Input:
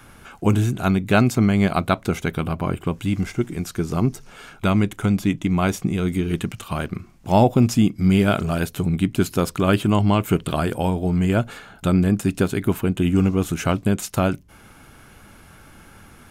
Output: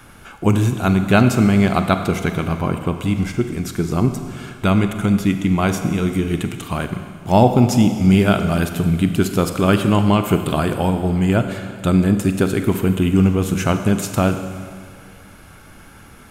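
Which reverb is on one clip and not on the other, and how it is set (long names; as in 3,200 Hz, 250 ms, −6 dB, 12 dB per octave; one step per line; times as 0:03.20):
four-comb reverb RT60 2 s, combs from 32 ms, DRR 7.5 dB
level +2.5 dB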